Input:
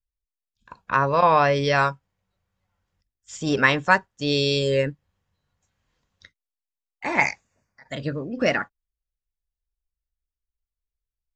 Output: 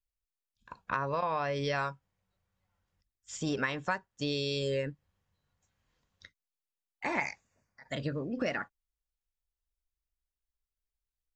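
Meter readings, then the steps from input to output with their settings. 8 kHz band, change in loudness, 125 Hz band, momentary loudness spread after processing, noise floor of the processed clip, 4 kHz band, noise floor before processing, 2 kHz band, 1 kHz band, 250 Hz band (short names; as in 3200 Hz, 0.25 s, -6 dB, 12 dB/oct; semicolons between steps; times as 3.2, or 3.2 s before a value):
-7.5 dB, -12.0 dB, -10.0 dB, 9 LU, under -85 dBFS, -11.0 dB, under -85 dBFS, -13.0 dB, -13.5 dB, -9.0 dB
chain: compressor 6:1, threshold -25 dBFS, peak gain reduction 13 dB; gain -4 dB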